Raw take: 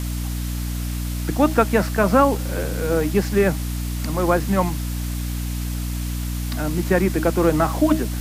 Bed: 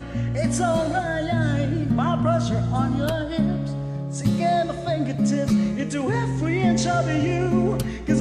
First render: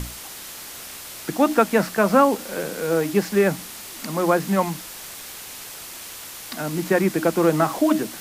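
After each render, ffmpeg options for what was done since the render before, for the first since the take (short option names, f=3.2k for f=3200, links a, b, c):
-af "bandreject=f=60:t=h:w=6,bandreject=f=120:t=h:w=6,bandreject=f=180:t=h:w=6,bandreject=f=240:t=h:w=6,bandreject=f=300:t=h:w=6"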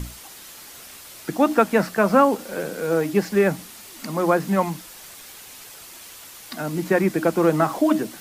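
-af "afftdn=nr=6:nf=-38"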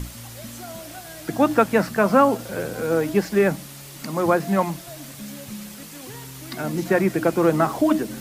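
-filter_complex "[1:a]volume=-16.5dB[a];[0:a][a]amix=inputs=2:normalize=0"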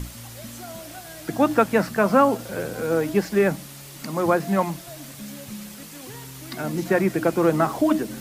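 -af "volume=-1dB"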